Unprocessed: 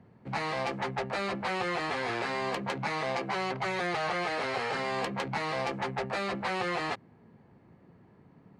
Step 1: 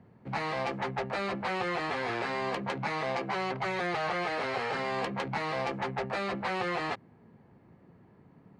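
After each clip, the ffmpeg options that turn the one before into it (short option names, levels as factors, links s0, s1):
-af "highshelf=f=5800:g=-7.5"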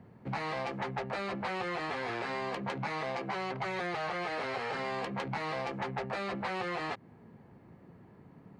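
-af "acompressor=threshold=0.0178:ratio=5,volume=1.33"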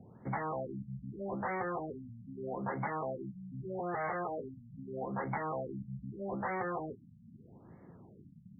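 -af "afftfilt=real='re*lt(b*sr/1024,230*pow(2300/230,0.5+0.5*sin(2*PI*0.8*pts/sr)))':imag='im*lt(b*sr/1024,230*pow(2300/230,0.5+0.5*sin(2*PI*0.8*pts/sr)))':win_size=1024:overlap=0.75"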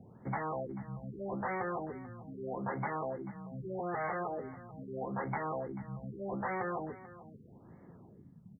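-af "aecho=1:1:439:0.15"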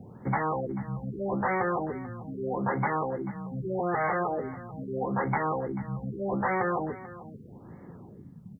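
-af "bandreject=f=660:w=15,volume=2.66"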